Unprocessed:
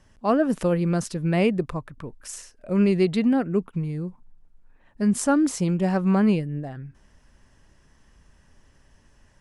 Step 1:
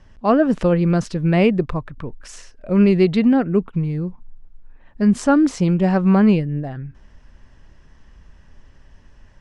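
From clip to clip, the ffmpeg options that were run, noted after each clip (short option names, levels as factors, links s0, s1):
-af "lowpass=4800,lowshelf=f=71:g=7.5,volume=1.78"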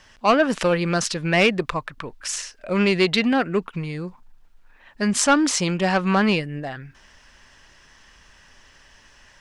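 -filter_complex "[0:a]asplit=2[s0][s1];[s1]highpass=f=720:p=1,volume=3.98,asoftclip=type=tanh:threshold=0.596[s2];[s0][s2]amix=inputs=2:normalize=0,lowpass=f=2600:p=1,volume=0.501,crystalizer=i=9:c=0,volume=0.531"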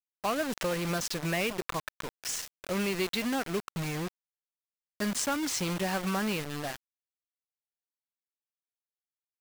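-af "acompressor=threshold=0.0794:ratio=4,acrusher=bits=4:mix=0:aa=0.000001,volume=0.473"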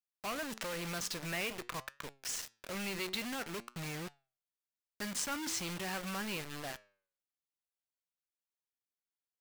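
-filter_complex "[0:a]flanger=delay=6.8:depth=4.1:regen=87:speed=0.49:shape=triangular,acrossover=split=1300[s0][s1];[s0]asoftclip=type=hard:threshold=0.01[s2];[s2][s1]amix=inputs=2:normalize=0"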